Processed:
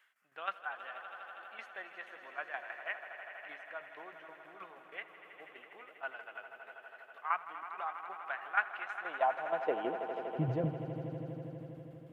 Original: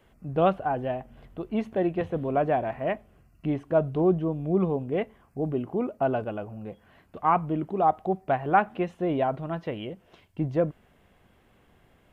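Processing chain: tremolo saw down 6.3 Hz, depth 70%; high-pass sweep 1600 Hz -> 100 Hz, 8.85–10.61; swelling echo 81 ms, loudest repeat 5, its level -13.5 dB; gain -5.5 dB

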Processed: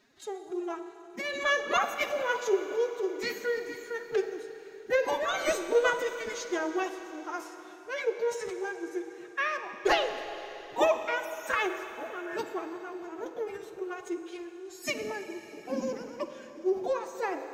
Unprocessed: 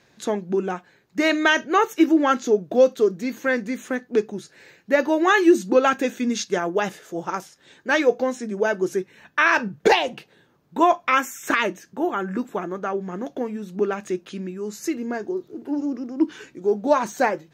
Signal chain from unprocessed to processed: de-hum 89.62 Hz, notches 14; tremolo 1.2 Hz, depth 64%; formant-preserving pitch shift +10.5 st; reverb RT60 3.7 s, pre-delay 40 ms, DRR 8 dB; gain -6 dB

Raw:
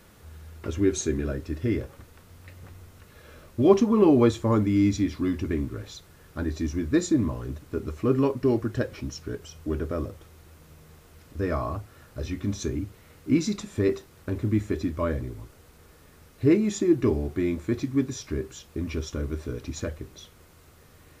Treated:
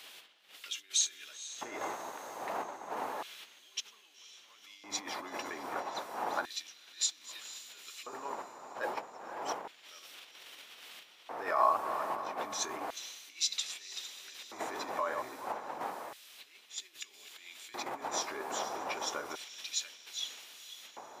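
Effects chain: reverse delay 0.256 s, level -13 dB; wind noise 310 Hz -22 dBFS; negative-ratio compressor -29 dBFS, ratio -1; diffused feedback echo 0.496 s, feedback 57%, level -13.5 dB; LFO high-pass square 0.31 Hz 870–3200 Hz; gain -3.5 dB

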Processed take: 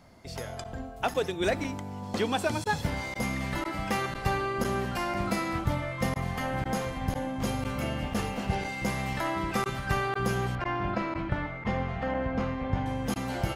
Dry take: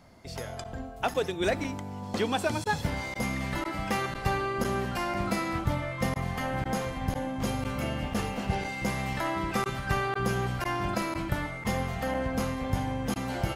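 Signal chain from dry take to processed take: 10.55–12.86 LPF 2700 Hz 12 dB/oct

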